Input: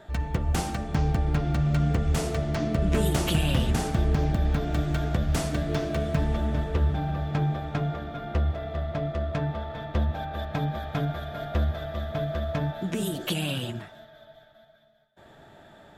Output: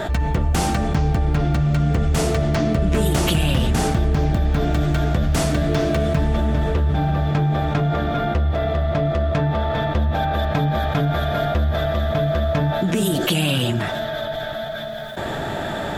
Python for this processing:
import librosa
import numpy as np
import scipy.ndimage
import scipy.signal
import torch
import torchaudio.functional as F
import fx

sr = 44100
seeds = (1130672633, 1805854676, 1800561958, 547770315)

y = fx.env_flatten(x, sr, amount_pct=70)
y = F.gain(torch.from_numpy(y), 3.0).numpy()